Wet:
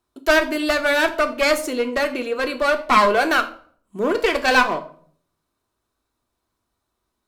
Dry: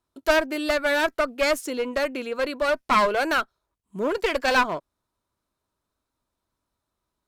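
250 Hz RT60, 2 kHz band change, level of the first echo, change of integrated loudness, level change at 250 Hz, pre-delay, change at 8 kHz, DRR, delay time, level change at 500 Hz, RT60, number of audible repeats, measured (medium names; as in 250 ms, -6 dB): 0.70 s, +5.5 dB, no echo, +4.5 dB, +5.0 dB, 3 ms, +4.5 dB, 6.0 dB, no echo, +4.0 dB, 0.55 s, no echo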